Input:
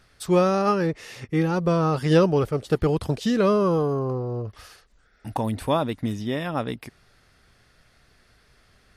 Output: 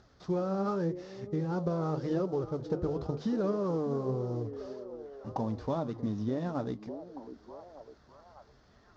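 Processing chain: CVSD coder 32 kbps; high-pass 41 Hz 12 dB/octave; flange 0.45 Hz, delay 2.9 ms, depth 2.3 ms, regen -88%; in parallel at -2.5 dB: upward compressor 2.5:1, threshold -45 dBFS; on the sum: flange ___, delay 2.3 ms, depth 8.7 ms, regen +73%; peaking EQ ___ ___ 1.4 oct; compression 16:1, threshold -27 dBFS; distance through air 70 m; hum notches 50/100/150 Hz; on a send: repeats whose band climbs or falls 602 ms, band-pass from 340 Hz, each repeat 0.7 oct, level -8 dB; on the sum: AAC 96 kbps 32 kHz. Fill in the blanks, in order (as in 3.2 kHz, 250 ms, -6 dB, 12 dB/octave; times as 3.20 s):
0.9 Hz, 2.5 kHz, -15 dB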